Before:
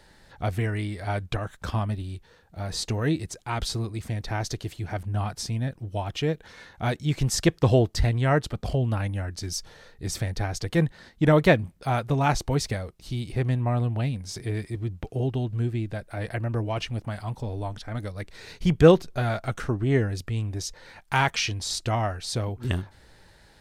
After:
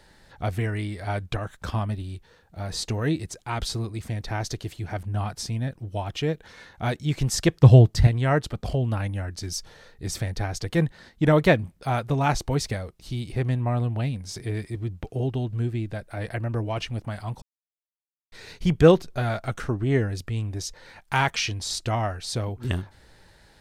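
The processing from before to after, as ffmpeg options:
-filter_complex "[0:a]asettb=1/sr,asplit=3[a][b][c];[a]atrim=end=7.614[d];[b]atrim=start=7.61:end=8.07,asetpts=PTS-STARTPTS,afade=t=in:d=0.004:c=qsin,afade=t=out:st=0.456:d=0.004:c=qsin,equalizer=f=130:w=1.5:g=11[e];[c]atrim=start=8.066[f];[d][e]acrossfade=d=0.004:c1=hsin:c2=qsin[g];[g][f]acrossfade=d=0.004:c1=qsin:c2=hsin,asplit=3[h][i][j];[h]atrim=end=17.42,asetpts=PTS-STARTPTS,afade=t=out:st=17.416:d=0.004:c=hsin[k];[i]atrim=start=17.42:end=18.32,asetpts=PTS-STARTPTS,volume=0[l];[j]atrim=start=18.32,asetpts=PTS-STARTPTS,afade=t=in:d=0.004:c=hsin[m];[k][l][m]concat=n=3:v=0:a=1"

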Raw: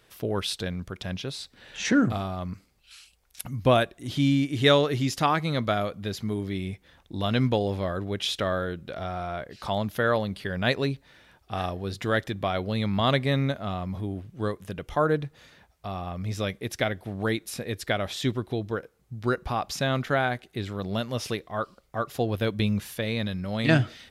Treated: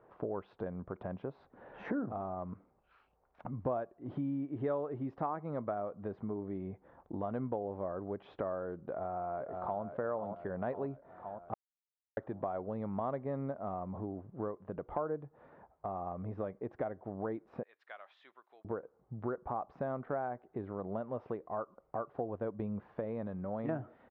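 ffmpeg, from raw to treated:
-filter_complex "[0:a]asplit=2[a][b];[b]afade=t=in:st=8.83:d=0.01,afade=t=out:st=9.82:d=0.01,aecho=0:1:520|1040|1560|2080|2600|3120:0.421697|0.210848|0.105424|0.0527121|0.026356|0.013178[c];[a][c]amix=inputs=2:normalize=0,asettb=1/sr,asplit=3[d][e][f];[d]atrim=end=17.634[g];[e]atrim=start=17.63:end=18.65,asetpts=PTS-STARTPTS,afade=t=in:d=0.004:c=qsin,afade=t=out:st=1.016:d=0.004:c=qsin,asuperpass=centerf=5600:order=4:qfactor=0.68[h];[f]atrim=start=18.646[i];[g][h]acrossfade=d=0.004:c1=hsin:c2=qsin[j];[j][i]acrossfade=d=0.004:c1=qsin:c2=hsin,asplit=3[k][l][m];[k]atrim=end=11.54,asetpts=PTS-STARTPTS,afade=t=out:st=11.536:d=0.004:c=hsin[n];[l]atrim=start=11.54:end=12.17,asetpts=PTS-STARTPTS,volume=0[o];[m]atrim=start=12.17,asetpts=PTS-STARTPTS,afade=t=in:d=0.004:c=hsin[p];[n][o][p]concat=n=3:v=0:a=1,lowpass=f=1k:w=0.5412,lowpass=f=1k:w=1.3066,aemphasis=mode=production:type=riaa,acompressor=threshold=-44dB:ratio=3,volume=6dB"

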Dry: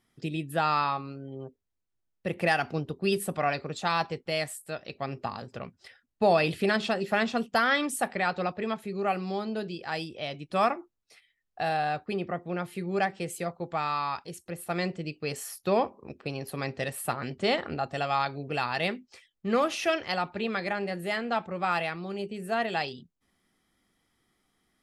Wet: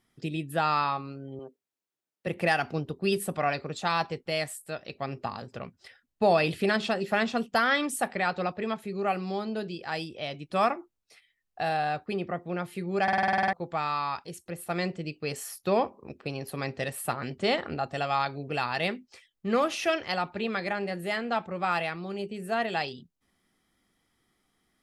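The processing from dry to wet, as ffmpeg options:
-filter_complex "[0:a]asettb=1/sr,asplit=3[a][b][c];[a]atrim=end=1.394[d];[b]atrim=start=1.39:end=2.27,asetpts=PTS-STARTPTS,afade=t=in:d=0.004:c=qsin,afade=t=out:st=0.876:d=0.004:c=qsin,highpass=250[e];[c]atrim=start=2.266[f];[d][e]acrossfade=d=0.004:c1=hsin:c2=qsin[g];[g][f]acrossfade=d=0.004:c1=qsin:c2=hsin,asplit=11[h][i][j][k][l][m][n][o][p][q][r];[h]atrim=end=13.082[s];[i]atrim=start=13.028:end=13.082[t];[j]atrim=start=13.028:end=13.082[u];[k]atrim=start=13.028:end=13.082[v];[l]atrim=start=13.028:end=13.082[w];[m]atrim=start=13.028:end=13.082[x];[n]atrim=start=13.028:end=13.082[y];[o]atrim=start=13.028:end=13.082[z];[p]atrim=start=13.028:end=13.082[aa];[q]atrim=start=13.028:end=13.082[ab];[r]atrim=start=13.528[ac];[s][t]acrossfade=d=0.004:c1=hsin:c2=hsin[ad];[ad][u]acrossfade=d=0.004:c1=hsin:c2=hsin[ae];[ae][v]acrossfade=d=0.004:c1=hsin:c2=hsin[af];[af][w]acrossfade=d=0.004:c1=hsin:c2=hsin[ag];[ag][x]acrossfade=d=0.004:c1=hsin:c2=hsin[ah];[ah][y]acrossfade=d=0.004:c1=hsin:c2=hsin[ai];[ai][z]acrossfade=d=0.004:c1=hsin:c2=hsin[aj];[aj][aa]acrossfade=d=0.004:c1=hsin:c2=hsin[ak];[ak][ab]acrossfade=d=0.004:c1=hsin:c2=hsin[al];[al][ac]acrossfade=d=0.004:c1=hsin:c2=hsin"

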